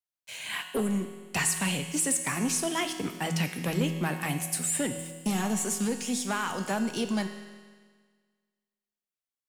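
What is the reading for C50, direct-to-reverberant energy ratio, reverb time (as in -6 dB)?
8.0 dB, 6.0 dB, 1.6 s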